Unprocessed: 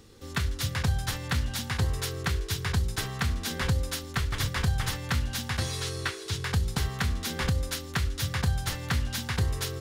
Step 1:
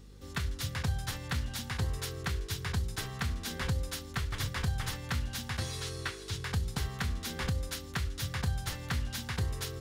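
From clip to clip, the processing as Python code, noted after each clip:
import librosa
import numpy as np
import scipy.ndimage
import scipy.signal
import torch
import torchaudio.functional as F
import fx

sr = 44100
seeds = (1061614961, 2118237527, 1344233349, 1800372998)

y = fx.add_hum(x, sr, base_hz=50, snr_db=18)
y = y * 10.0 ** (-5.5 / 20.0)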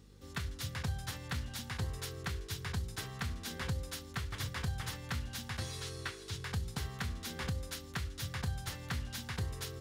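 y = scipy.signal.sosfilt(scipy.signal.butter(2, 53.0, 'highpass', fs=sr, output='sos'), x)
y = y * 10.0 ** (-4.0 / 20.0)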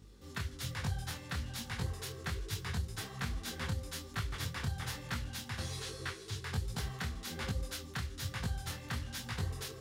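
y = fx.detune_double(x, sr, cents=41)
y = y * 10.0 ** (4.0 / 20.0)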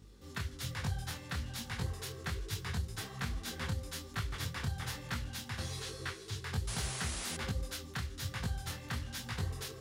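y = fx.spec_paint(x, sr, seeds[0], shape='noise', start_s=6.67, length_s=0.7, low_hz=310.0, high_hz=11000.0, level_db=-42.0)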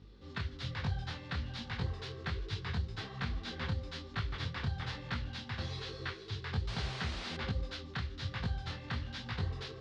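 y = scipy.signal.sosfilt(scipy.signal.cheby1(3, 1.0, 4300.0, 'lowpass', fs=sr, output='sos'), x)
y = y * 10.0 ** (1.0 / 20.0)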